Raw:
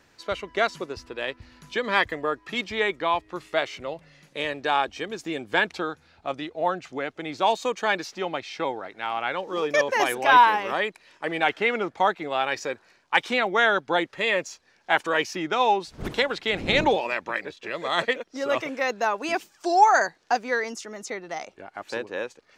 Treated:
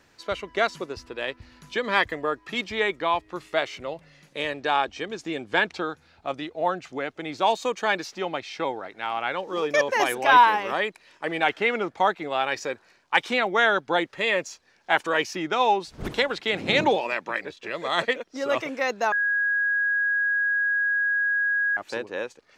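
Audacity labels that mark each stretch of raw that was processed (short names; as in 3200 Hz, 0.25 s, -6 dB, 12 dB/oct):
4.540000	5.890000	LPF 8000 Hz
16.400000	17.410000	HPF 110 Hz 24 dB/oct
19.120000	21.770000	bleep 1650 Hz -20.5 dBFS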